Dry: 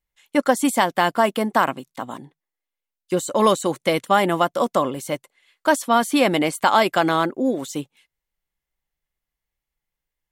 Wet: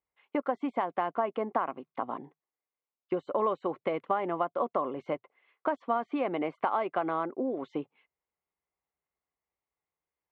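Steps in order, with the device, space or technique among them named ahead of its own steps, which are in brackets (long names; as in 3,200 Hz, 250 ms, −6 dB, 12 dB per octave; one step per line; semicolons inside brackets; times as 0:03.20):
high-pass filter 60 Hz
bass amplifier (downward compressor 4 to 1, threshold −26 dBFS, peak gain reduction 12.5 dB; loudspeaker in its box 82–2,300 Hz, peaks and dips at 130 Hz −9 dB, 200 Hz −5 dB, 420 Hz +5 dB, 720 Hz +4 dB, 1,100 Hz +5 dB, 1,700 Hz −6 dB)
level −3.5 dB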